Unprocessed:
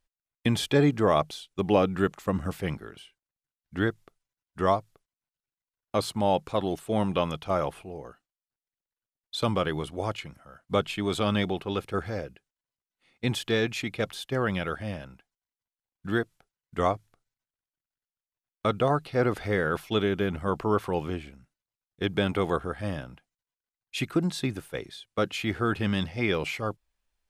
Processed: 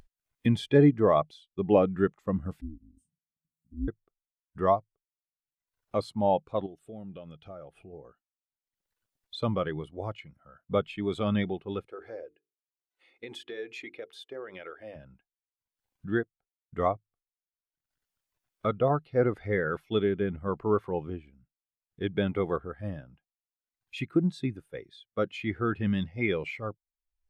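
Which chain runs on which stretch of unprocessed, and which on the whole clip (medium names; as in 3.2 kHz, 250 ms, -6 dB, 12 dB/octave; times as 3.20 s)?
2.61–3.88 s: Chebyshev band-stop 110–7100 Hz, order 3 + bass shelf 420 Hz +7 dB + ring modulator 160 Hz
6.66–7.93 s: peaking EQ 1 kHz -12 dB 0.23 oct + compression 2:1, threshold -41 dBFS
11.88–14.96 s: resonant low shelf 250 Hz -11.5 dB, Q 1.5 + compression, threshold -29 dBFS + hum notches 50/100/150/200/250/300/350/400/450 Hz
whole clip: upward compressor, threshold -32 dBFS; dynamic bell 2 kHz, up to +4 dB, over -47 dBFS, Q 3.6; spectral contrast expander 1.5:1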